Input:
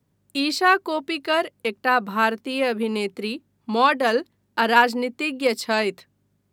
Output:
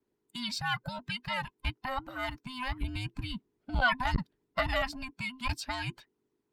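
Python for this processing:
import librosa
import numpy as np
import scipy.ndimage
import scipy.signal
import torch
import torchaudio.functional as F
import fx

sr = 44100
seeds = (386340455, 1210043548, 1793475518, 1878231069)

y = fx.band_invert(x, sr, width_hz=500)
y = fx.low_shelf(y, sr, hz=140.0, db=8.5, at=(2.81, 4.82))
y = fx.hpss(y, sr, part='harmonic', gain_db=-11)
y = fx.high_shelf(y, sr, hz=7900.0, db=-8.5)
y = fx.transformer_sat(y, sr, knee_hz=170.0)
y = y * 10.0 ** (-5.5 / 20.0)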